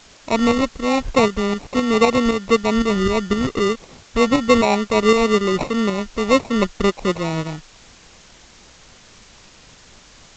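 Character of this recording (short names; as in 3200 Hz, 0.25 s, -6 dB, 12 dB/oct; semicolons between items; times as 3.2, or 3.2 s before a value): aliases and images of a low sample rate 1600 Hz, jitter 0%; tremolo saw up 3.9 Hz, depth 55%; a quantiser's noise floor 8-bit, dither triangular; G.722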